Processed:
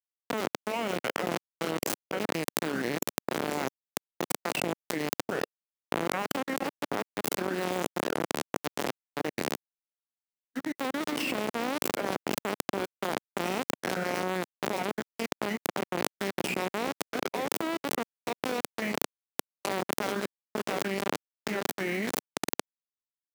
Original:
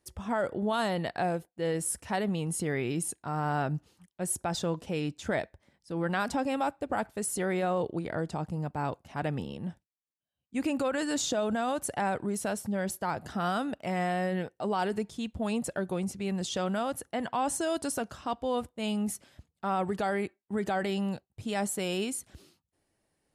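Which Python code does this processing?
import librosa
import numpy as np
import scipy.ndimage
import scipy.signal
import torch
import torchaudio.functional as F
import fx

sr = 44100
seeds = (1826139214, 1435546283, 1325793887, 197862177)

p1 = fx.vibrato(x, sr, rate_hz=2.1, depth_cents=7.0)
p2 = fx.band_shelf(p1, sr, hz=2800.0, db=13.5, octaves=1.3)
p3 = fx.echo_diffused(p2, sr, ms=577, feedback_pct=60, wet_db=-9.0)
p4 = fx.level_steps(p3, sr, step_db=13)
p5 = p3 + (p4 * librosa.db_to_amplitude(2.5))
p6 = np.where(np.abs(p5) >= 10.0 ** (-18.5 / 20.0), p5, 0.0)
p7 = fx.formant_shift(p6, sr, semitones=-5)
p8 = scipy.signal.sosfilt(scipy.signal.butter(2, 240.0, 'highpass', fs=sr, output='sos'), p7)
p9 = fx.tilt_shelf(p8, sr, db=9.0, hz=970.0)
p10 = fx.env_flatten(p9, sr, amount_pct=100)
y = p10 * librosa.db_to_amplitude(-15.0)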